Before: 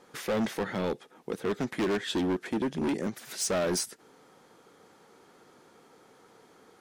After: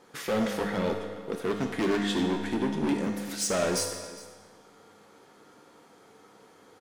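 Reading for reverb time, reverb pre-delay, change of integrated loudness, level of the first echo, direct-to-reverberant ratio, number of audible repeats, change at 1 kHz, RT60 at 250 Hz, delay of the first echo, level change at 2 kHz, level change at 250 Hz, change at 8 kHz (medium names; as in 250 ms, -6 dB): 1.5 s, 4 ms, +2.0 dB, -19.0 dB, 2.0 dB, 1, +2.5 dB, 1.6 s, 407 ms, +2.0 dB, +2.5 dB, +1.5 dB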